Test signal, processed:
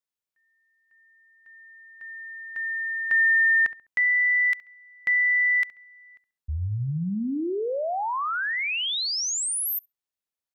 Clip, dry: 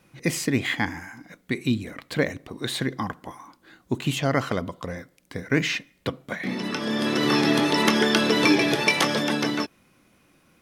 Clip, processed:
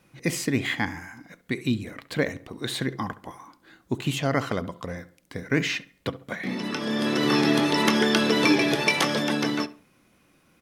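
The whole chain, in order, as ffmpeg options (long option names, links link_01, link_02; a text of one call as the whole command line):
ffmpeg -i in.wav -filter_complex "[0:a]asplit=2[link_01][link_02];[link_02]adelay=68,lowpass=frequency=2100:poles=1,volume=-16dB,asplit=2[link_03][link_04];[link_04]adelay=68,lowpass=frequency=2100:poles=1,volume=0.35,asplit=2[link_05][link_06];[link_06]adelay=68,lowpass=frequency=2100:poles=1,volume=0.35[link_07];[link_01][link_03][link_05][link_07]amix=inputs=4:normalize=0,volume=-1.5dB" out.wav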